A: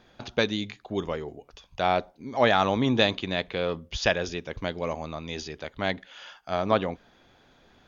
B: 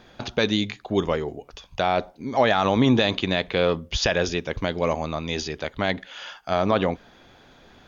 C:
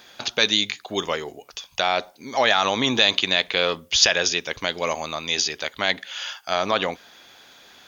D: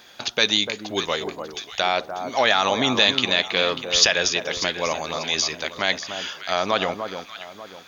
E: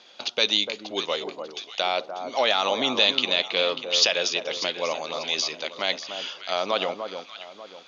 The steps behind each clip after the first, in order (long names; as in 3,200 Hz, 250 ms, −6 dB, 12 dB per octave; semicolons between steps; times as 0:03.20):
brickwall limiter −15 dBFS, peak gain reduction 9.5 dB; level +7 dB
spectral tilt +4 dB per octave; level +1 dB
delay that swaps between a low-pass and a high-pass 296 ms, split 1,300 Hz, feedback 57%, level −7 dB
loudspeaker in its box 230–6,300 Hz, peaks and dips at 540 Hz +4 dB, 1,700 Hz −7 dB, 2,900 Hz +4 dB, 4,200 Hz +3 dB; level −4 dB